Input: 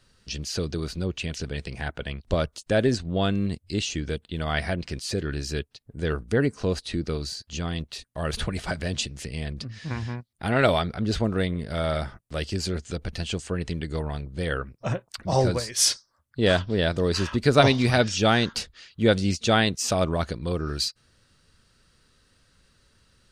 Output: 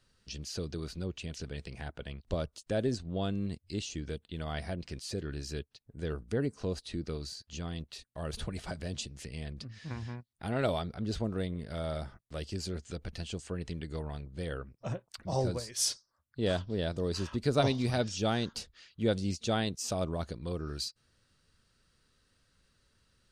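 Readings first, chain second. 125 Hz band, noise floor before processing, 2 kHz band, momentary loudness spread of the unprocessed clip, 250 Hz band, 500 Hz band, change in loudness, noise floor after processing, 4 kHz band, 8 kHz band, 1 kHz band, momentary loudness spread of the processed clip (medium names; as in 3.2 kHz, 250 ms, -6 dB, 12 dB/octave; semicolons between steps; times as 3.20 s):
-8.5 dB, -67 dBFS, -14.0 dB, 12 LU, -8.5 dB, -9.5 dB, -9.5 dB, -75 dBFS, -10.5 dB, -9.0 dB, -11.0 dB, 11 LU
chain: dynamic bell 1.9 kHz, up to -7 dB, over -40 dBFS, Q 0.85; trim -8.5 dB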